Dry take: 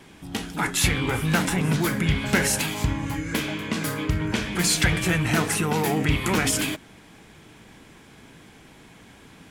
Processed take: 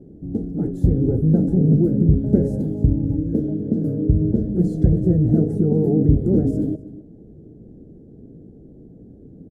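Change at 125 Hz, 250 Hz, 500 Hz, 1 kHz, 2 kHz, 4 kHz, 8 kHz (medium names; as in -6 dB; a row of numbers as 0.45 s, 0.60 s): +8.0 dB, +8.0 dB, +6.0 dB, under -15 dB, under -35 dB, under -35 dB, under -30 dB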